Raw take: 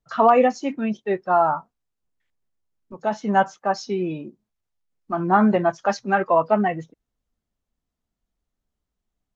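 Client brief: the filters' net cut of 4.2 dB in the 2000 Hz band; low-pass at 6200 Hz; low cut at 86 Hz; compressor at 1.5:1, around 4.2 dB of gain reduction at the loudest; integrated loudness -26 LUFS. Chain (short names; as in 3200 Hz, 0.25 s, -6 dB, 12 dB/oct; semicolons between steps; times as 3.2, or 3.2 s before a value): HPF 86 Hz; LPF 6200 Hz; bell 2000 Hz -6 dB; compressor 1.5:1, threshold -24 dBFS; gain -1 dB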